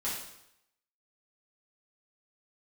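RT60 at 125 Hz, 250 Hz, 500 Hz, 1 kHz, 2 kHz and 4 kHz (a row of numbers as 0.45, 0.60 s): 0.80, 0.75, 0.80, 0.80, 0.75, 0.75 s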